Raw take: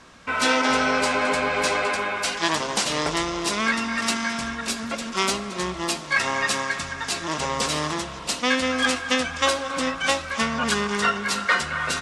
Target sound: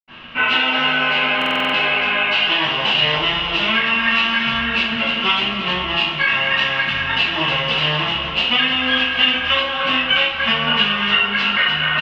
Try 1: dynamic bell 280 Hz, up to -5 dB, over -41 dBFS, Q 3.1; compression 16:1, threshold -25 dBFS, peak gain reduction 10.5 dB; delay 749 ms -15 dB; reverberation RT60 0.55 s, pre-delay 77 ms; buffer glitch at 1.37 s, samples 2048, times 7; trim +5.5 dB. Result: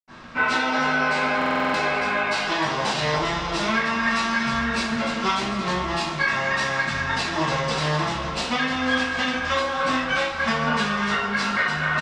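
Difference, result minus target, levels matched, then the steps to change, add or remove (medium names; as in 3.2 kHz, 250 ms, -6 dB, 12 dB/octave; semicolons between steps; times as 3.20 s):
4 kHz band -6.5 dB
add after compression: resonant low-pass 2.9 kHz, resonance Q 9.4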